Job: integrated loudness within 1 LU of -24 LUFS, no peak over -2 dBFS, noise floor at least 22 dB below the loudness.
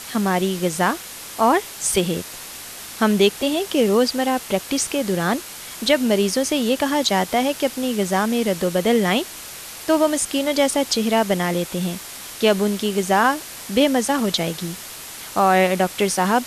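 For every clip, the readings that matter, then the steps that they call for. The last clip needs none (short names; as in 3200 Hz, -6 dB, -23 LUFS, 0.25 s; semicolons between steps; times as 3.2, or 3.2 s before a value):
noise floor -36 dBFS; noise floor target -42 dBFS; loudness -20.0 LUFS; peak -5.0 dBFS; loudness target -24.0 LUFS
-> noise print and reduce 6 dB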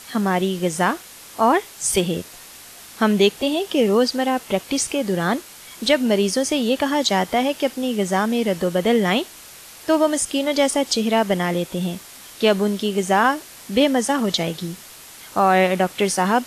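noise floor -42 dBFS; noise floor target -43 dBFS
-> noise print and reduce 6 dB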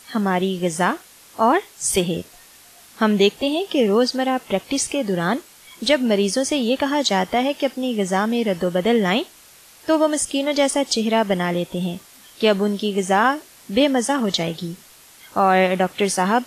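noise floor -48 dBFS; loudness -20.5 LUFS; peak -5.0 dBFS; loudness target -24.0 LUFS
-> gain -3.5 dB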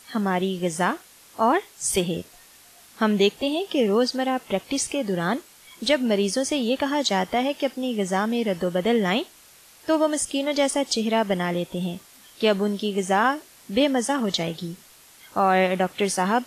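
loudness -24.0 LUFS; peak -8.5 dBFS; noise floor -51 dBFS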